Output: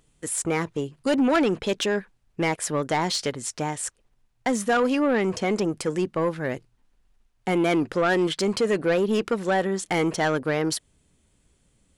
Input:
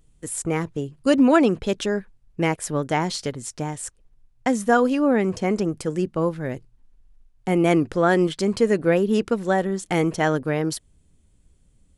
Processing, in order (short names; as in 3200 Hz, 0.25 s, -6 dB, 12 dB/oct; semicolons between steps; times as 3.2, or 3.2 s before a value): LPF 2000 Hz 6 dB/oct; tilt +3 dB/oct; in parallel at -1 dB: limiter -19 dBFS, peak gain reduction 12 dB; on the sum: soft clip -15.5 dBFS, distortion -14 dB